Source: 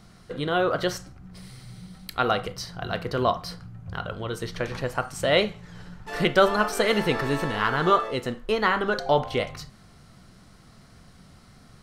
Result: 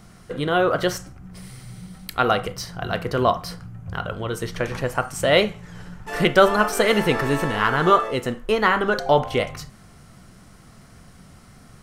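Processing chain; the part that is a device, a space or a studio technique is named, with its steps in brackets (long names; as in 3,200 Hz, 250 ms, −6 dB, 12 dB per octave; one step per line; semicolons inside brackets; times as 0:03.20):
exciter from parts (in parallel at −4.5 dB: high-pass filter 3,900 Hz 24 dB per octave + soft clipping −34 dBFS, distortion −10 dB)
on the sum: level +4 dB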